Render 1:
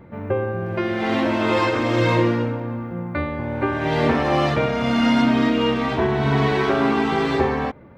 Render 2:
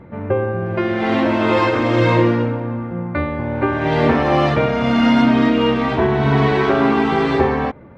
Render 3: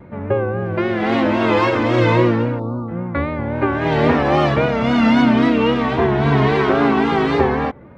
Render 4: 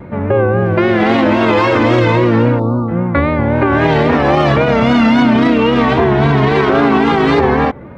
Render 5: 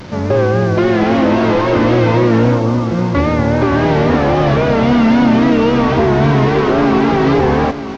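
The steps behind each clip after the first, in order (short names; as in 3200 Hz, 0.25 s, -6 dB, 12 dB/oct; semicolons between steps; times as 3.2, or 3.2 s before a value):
LPF 3400 Hz 6 dB/oct; gain +4 dB
spectral delete 2.6–2.89, 1400–3700 Hz; vibrato 3.7 Hz 71 cents
limiter -12 dBFS, peak gain reduction 10 dB; gain +9 dB
delta modulation 32 kbps, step -29 dBFS; echo 0.934 s -13 dB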